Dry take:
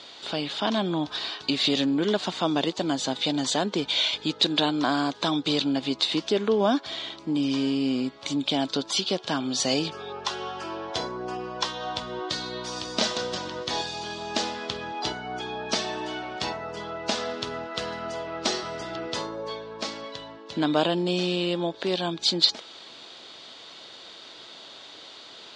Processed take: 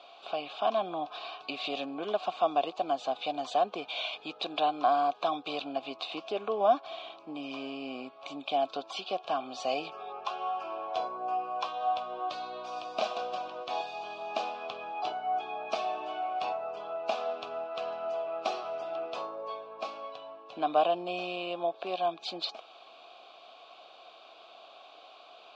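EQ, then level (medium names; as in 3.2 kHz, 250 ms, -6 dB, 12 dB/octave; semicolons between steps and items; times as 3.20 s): vowel filter a; +6.5 dB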